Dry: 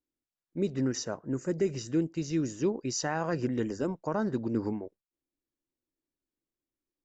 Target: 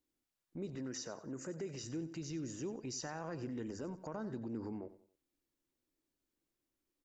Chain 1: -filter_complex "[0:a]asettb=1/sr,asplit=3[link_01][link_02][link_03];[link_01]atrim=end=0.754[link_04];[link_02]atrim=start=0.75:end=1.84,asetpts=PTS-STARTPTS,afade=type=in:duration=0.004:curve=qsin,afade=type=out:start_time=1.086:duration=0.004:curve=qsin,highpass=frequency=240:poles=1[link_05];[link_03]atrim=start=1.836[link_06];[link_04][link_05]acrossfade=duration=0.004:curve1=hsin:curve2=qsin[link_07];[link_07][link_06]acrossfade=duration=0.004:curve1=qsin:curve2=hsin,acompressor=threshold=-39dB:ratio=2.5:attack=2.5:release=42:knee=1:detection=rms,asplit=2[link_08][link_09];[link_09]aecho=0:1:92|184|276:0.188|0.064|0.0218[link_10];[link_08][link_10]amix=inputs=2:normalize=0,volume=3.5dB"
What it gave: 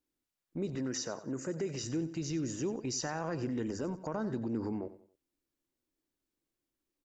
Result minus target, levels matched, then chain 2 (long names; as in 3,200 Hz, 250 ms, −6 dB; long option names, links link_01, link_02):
downward compressor: peak gain reduction −7 dB
-filter_complex "[0:a]asettb=1/sr,asplit=3[link_01][link_02][link_03];[link_01]atrim=end=0.754[link_04];[link_02]atrim=start=0.75:end=1.84,asetpts=PTS-STARTPTS,afade=type=in:duration=0.004:curve=qsin,afade=type=out:start_time=1.086:duration=0.004:curve=qsin,highpass=frequency=240:poles=1[link_05];[link_03]atrim=start=1.836[link_06];[link_04][link_05]acrossfade=duration=0.004:curve1=hsin:curve2=qsin[link_07];[link_07][link_06]acrossfade=duration=0.004:curve1=qsin:curve2=hsin,acompressor=threshold=-50.5dB:ratio=2.5:attack=2.5:release=42:knee=1:detection=rms,asplit=2[link_08][link_09];[link_09]aecho=0:1:92|184|276:0.188|0.064|0.0218[link_10];[link_08][link_10]amix=inputs=2:normalize=0,volume=3.5dB"